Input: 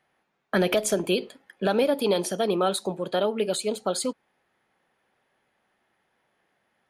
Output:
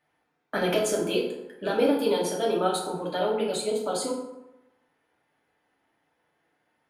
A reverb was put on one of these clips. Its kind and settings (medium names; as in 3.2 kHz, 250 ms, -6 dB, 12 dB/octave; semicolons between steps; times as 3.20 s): FDN reverb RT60 0.94 s, low-frequency decay 1×, high-frequency decay 0.55×, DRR -4 dB; trim -6.5 dB